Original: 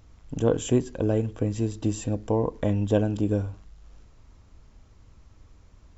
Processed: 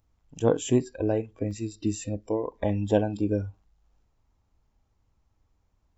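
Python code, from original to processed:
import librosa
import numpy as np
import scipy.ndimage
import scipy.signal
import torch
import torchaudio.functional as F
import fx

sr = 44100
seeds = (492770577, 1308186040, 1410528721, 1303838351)

y = fx.noise_reduce_blind(x, sr, reduce_db=17)
y = fx.peak_eq(y, sr, hz=820.0, db=fx.steps((0.0, 4.5), (1.51, -9.0), (2.52, 7.0)), octaves=0.45)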